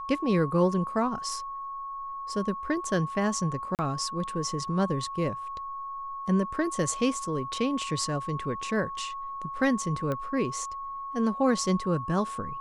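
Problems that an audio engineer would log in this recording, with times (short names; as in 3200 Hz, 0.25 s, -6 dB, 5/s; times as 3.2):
tone 1100 Hz -34 dBFS
3.75–3.79 gap 38 ms
10.12 pop -19 dBFS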